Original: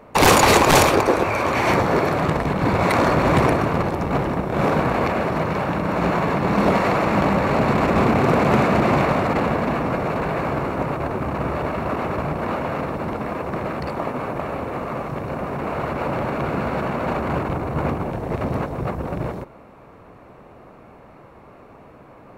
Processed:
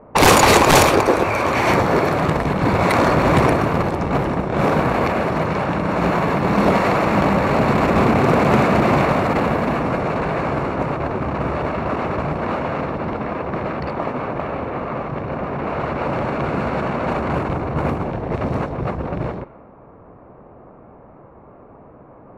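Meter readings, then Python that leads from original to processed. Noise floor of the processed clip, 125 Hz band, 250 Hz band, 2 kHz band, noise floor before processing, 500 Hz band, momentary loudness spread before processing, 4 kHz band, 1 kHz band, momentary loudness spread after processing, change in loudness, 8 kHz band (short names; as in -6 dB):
-44 dBFS, +2.0 dB, +2.0 dB, +2.0 dB, -46 dBFS, +2.0 dB, 10 LU, +2.0 dB, +2.0 dB, 10 LU, +2.0 dB, n/a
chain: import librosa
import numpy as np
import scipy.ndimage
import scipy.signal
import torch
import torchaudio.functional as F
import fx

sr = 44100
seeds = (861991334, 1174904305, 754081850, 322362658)

y = fx.env_lowpass(x, sr, base_hz=1000.0, full_db=-17.0)
y = F.gain(torch.from_numpy(y), 2.0).numpy()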